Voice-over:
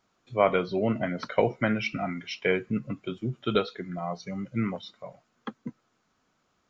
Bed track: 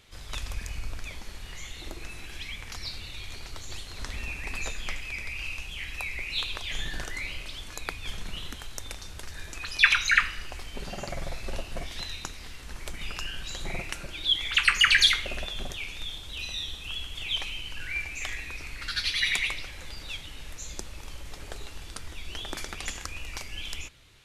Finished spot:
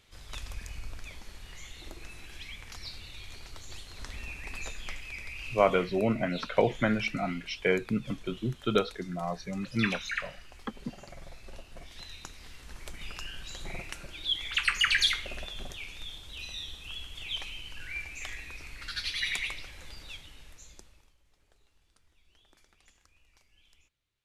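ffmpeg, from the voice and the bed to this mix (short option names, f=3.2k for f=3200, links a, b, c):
-filter_complex "[0:a]adelay=5200,volume=-1dB[a];[1:a]volume=1.5dB,afade=t=out:st=5.65:d=0.41:silence=0.446684,afade=t=in:st=11.75:d=0.82:silence=0.446684,afade=t=out:st=19.93:d=1.21:silence=0.0749894[b];[a][b]amix=inputs=2:normalize=0"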